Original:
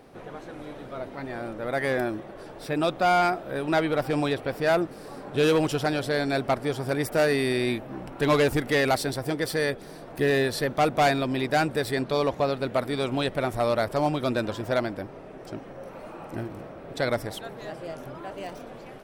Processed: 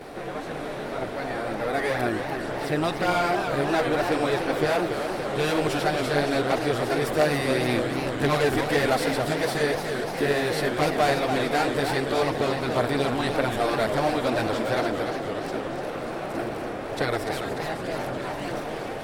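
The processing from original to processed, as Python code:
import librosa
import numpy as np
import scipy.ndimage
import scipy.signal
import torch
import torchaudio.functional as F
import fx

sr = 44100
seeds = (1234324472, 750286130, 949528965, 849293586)

y = fx.bin_compress(x, sr, power=0.6)
y = fx.chorus_voices(y, sr, voices=2, hz=0.97, base_ms=12, depth_ms=3.0, mix_pct=65)
y = fx.echo_warbled(y, sr, ms=289, feedback_pct=72, rate_hz=2.8, cents=207, wet_db=-7.0)
y = F.gain(torch.from_numpy(y), -1.5).numpy()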